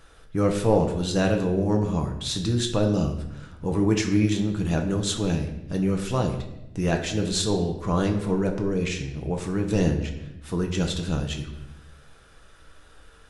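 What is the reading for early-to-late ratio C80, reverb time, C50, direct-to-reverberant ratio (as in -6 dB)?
10.0 dB, 0.90 s, 8.0 dB, 3.0 dB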